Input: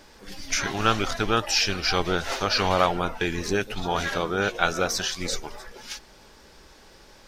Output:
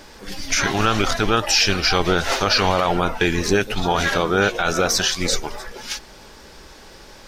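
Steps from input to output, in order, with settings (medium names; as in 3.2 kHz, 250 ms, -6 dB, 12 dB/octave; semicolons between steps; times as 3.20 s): peak limiter -15 dBFS, peak gain reduction 11 dB; trim +8 dB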